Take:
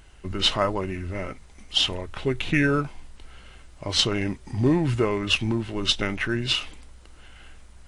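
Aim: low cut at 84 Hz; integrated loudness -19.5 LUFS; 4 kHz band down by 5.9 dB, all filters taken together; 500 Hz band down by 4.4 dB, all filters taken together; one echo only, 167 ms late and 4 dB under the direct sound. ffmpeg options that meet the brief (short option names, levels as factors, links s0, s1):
-af "highpass=84,equalizer=f=500:t=o:g=-6,equalizer=f=4000:t=o:g=-8,aecho=1:1:167:0.631,volume=2.24"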